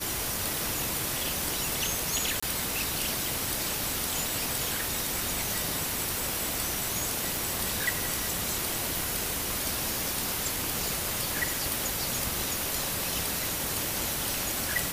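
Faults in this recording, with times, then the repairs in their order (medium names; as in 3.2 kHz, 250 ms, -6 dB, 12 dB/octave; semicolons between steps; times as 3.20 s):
2.40–2.42 s: dropout 25 ms
7.36 s: pop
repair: de-click; interpolate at 2.40 s, 25 ms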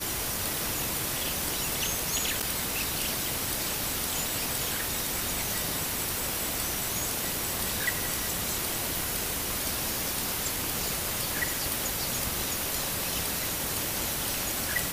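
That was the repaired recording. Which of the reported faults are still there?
nothing left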